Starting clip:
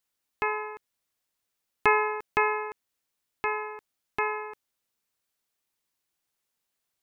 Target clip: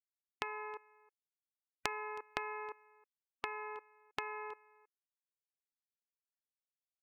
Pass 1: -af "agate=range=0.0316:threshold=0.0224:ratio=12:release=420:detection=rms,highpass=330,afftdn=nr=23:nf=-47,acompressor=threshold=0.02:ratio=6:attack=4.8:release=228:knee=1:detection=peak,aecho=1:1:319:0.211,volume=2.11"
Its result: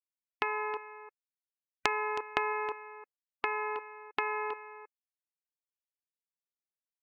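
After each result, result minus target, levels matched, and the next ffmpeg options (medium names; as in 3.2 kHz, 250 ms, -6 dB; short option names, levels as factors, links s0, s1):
compression: peak gain reduction -9.5 dB; echo-to-direct +9 dB
-af "agate=range=0.0316:threshold=0.0224:ratio=12:release=420:detection=rms,highpass=330,afftdn=nr=23:nf=-47,acompressor=threshold=0.00531:ratio=6:attack=4.8:release=228:knee=1:detection=peak,aecho=1:1:319:0.211,volume=2.11"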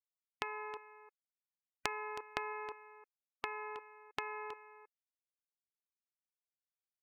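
echo-to-direct +9 dB
-af "agate=range=0.0316:threshold=0.0224:ratio=12:release=420:detection=rms,highpass=330,afftdn=nr=23:nf=-47,acompressor=threshold=0.00531:ratio=6:attack=4.8:release=228:knee=1:detection=peak,aecho=1:1:319:0.075,volume=2.11"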